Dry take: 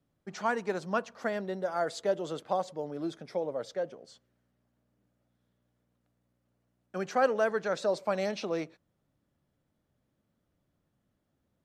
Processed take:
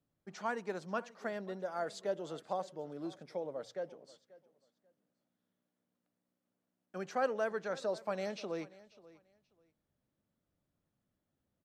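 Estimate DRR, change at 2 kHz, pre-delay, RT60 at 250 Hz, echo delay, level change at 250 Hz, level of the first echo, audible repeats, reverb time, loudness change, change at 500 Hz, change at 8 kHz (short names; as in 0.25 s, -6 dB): none, -7.0 dB, none, none, 0.537 s, -7.0 dB, -20.0 dB, 2, none, -7.0 dB, -7.0 dB, -7.0 dB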